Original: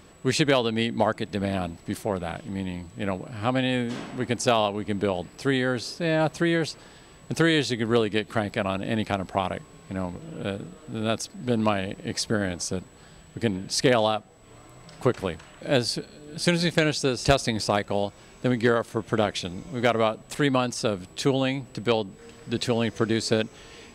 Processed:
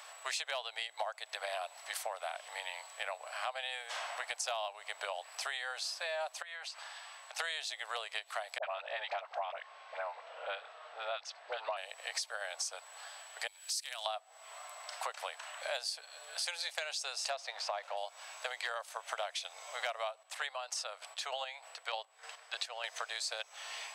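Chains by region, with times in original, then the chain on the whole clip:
6.42–7.39 s: high-pass 660 Hz + treble shelf 8 kHz -9 dB + compression 4:1, threshold -45 dBFS
8.58–11.77 s: distance through air 200 m + phase dispersion highs, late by 53 ms, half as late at 760 Hz
13.47–14.06 s: upward compressor, threshold -24 dBFS + differentiator
17.30–17.97 s: jump at every zero crossing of -33.5 dBFS + tape spacing loss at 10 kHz 20 dB
20.11–22.84 s: treble shelf 8.2 kHz -7.5 dB + square tremolo 3.3 Hz, depth 60%, duty 40%
whole clip: steep high-pass 640 Hz 48 dB/octave; dynamic bell 1.4 kHz, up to -4 dB, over -37 dBFS, Q 0.74; compression 5:1, threshold -41 dBFS; trim +4.5 dB

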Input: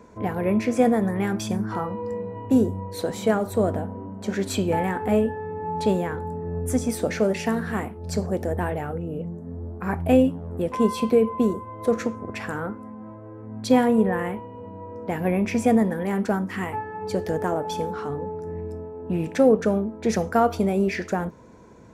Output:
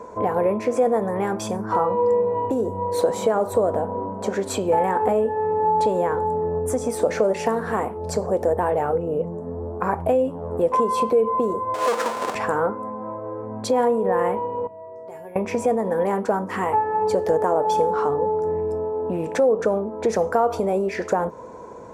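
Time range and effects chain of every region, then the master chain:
11.74–12.35 s: square wave that keeps the level + frequency weighting A
14.67–15.36 s: tone controls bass +1 dB, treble +9 dB + compression 2.5:1, threshold -34 dBFS + feedback comb 130 Hz, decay 0.37 s, harmonics odd, mix 90%
whole clip: peak limiter -15 dBFS; compression 3:1, threshold -29 dBFS; graphic EQ 500/1000/8000 Hz +12/+12/+6 dB

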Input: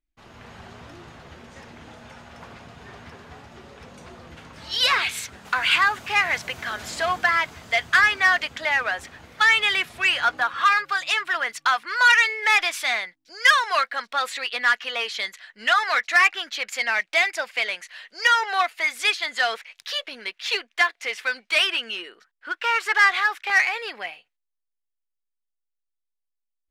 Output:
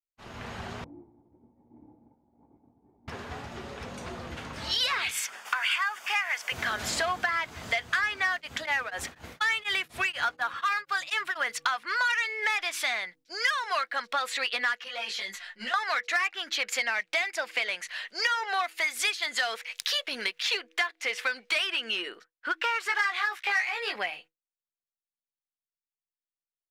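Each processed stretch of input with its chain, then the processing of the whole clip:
0.84–3.08 s: backward echo that repeats 109 ms, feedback 74%, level -10 dB + cascade formant filter u
5.11–6.52 s: high-pass 900 Hz + treble shelf 9.2 kHz +2.5 dB + band-stop 4 kHz, Q 5.2
8.30–11.53 s: treble shelf 8.9 kHz +6.5 dB + tremolo of two beating tones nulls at 4.1 Hz
14.84–15.74 s: comb 5.6 ms, depth 98% + compression, threshold -32 dBFS + detune thickener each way 17 cents
18.63–20.43 s: treble shelf 5.3 kHz +6.5 dB + tape noise reduction on one side only encoder only
22.88–23.96 s: bass shelf 250 Hz -10 dB + doubling 17 ms -2.5 dB
whole clip: de-hum 161.7 Hz, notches 3; expander -46 dBFS; compression 5:1, threshold -31 dBFS; trim +4.5 dB

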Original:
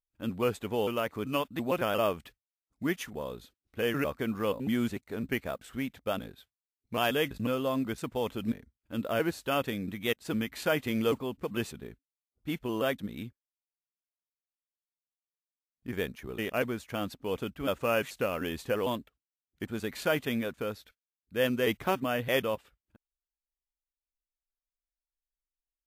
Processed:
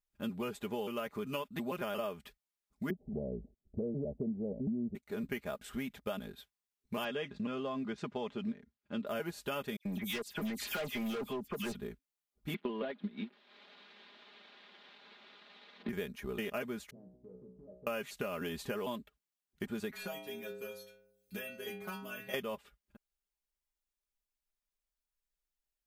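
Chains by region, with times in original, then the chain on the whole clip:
2.90–4.95 s: steep low-pass 740 Hz 72 dB/octave + bass shelf 330 Hz +11.5 dB
7.04–9.07 s: band-pass 110–6000 Hz + distance through air 60 m
9.76–11.75 s: phase dispersion lows, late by 91 ms, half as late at 2.9 kHz + expander -45 dBFS + hard clipper -31 dBFS
12.54–15.89 s: one-bit delta coder 64 kbps, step -46.5 dBFS + Chebyshev band-pass 200–3900 Hz, order 4 + transient shaper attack +9 dB, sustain -8 dB
16.90–17.87 s: inverse Chebyshev low-pass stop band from 1.5 kHz, stop band 50 dB + compression 10:1, threshold -39 dBFS + feedback comb 62 Hz, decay 0.68 s, mix 90%
19.91–22.34 s: treble shelf 11 kHz +8 dB + inharmonic resonator 96 Hz, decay 0.79 s, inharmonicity 0.008 + three bands compressed up and down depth 100%
whole clip: comb 4.9 ms, depth 65%; compression, threshold -35 dBFS

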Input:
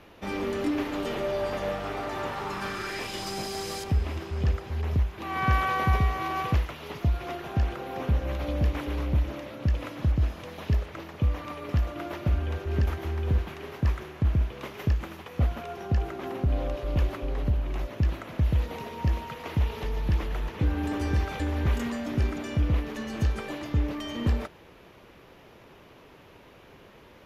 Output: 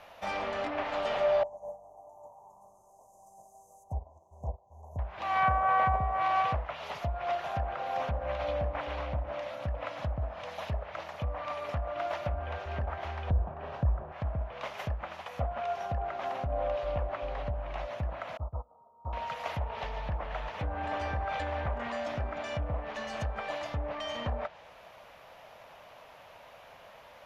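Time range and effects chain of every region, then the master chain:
1.43–4.99 s: Chebyshev band-stop 1–6.2 kHz, order 5 + upward expansion 2.5:1, over -34 dBFS
13.30–14.12 s: tilt EQ -3 dB/octave + band-stop 2.1 kHz, Q 9.8 + compression 4:1, threshold -13 dBFS
18.37–19.13 s: rippled Chebyshev low-pass 1.3 kHz, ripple 3 dB + gate -26 dBFS, range -22 dB
whole clip: low-pass that closes with the level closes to 920 Hz, closed at -19.5 dBFS; resonant low shelf 480 Hz -9.5 dB, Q 3

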